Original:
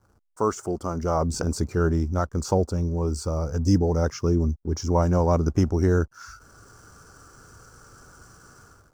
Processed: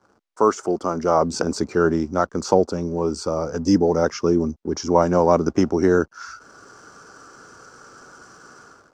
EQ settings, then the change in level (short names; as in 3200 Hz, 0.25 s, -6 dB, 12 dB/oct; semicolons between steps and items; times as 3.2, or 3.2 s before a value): three-band isolator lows -21 dB, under 190 Hz, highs -21 dB, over 6800 Hz; +7.0 dB